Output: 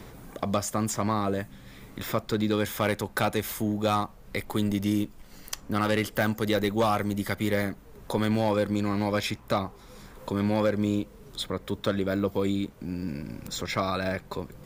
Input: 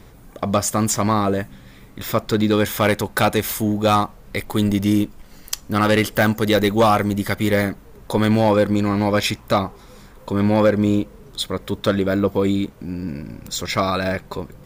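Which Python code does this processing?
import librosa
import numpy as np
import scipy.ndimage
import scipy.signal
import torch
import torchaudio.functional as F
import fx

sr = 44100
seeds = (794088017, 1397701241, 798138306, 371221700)

y = fx.band_squash(x, sr, depth_pct=40)
y = F.gain(torch.from_numpy(y), -8.5).numpy()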